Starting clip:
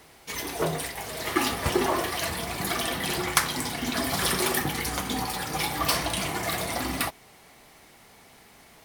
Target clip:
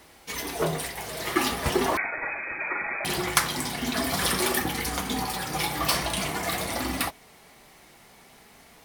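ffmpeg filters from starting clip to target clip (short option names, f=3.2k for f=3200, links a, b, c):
-filter_complex "[0:a]flanger=delay=3.3:depth=2.6:regen=-62:speed=0.44:shape=triangular,asettb=1/sr,asplit=3[a][b][c];[a]atrim=end=1.974[d];[b]atrim=start=1.97:end=3.05,asetpts=PTS-STARTPTS,afade=t=in:d=0.004:c=qsin,afade=t=out:st=1.076:d=0.004:c=qsin,lowpass=f=2.2k:t=q:w=0.5098,lowpass=f=2.2k:t=q:w=0.6013,lowpass=f=2.2k:t=q:w=0.9,lowpass=f=2.2k:t=q:w=2.563,afreqshift=-2600[e];[c]atrim=start=3.046[f];[d][e]acrossfade=d=0.004:c1=hsin:c2=qsin[g];[g][f]acrossfade=d=0.004:c1=qsin:c2=hsin,volume=4.5dB"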